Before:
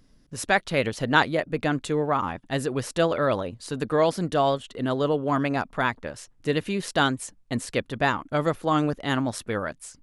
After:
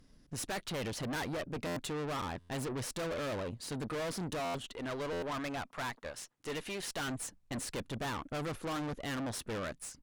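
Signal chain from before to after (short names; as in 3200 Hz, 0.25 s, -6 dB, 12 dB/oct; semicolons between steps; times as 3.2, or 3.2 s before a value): 4.72–7.08 HPF 610 Hz 6 dB/oct; tube stage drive 35 dB, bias 0.55; stuck buffer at 1.66/2.39/4.44/5.12, samples 512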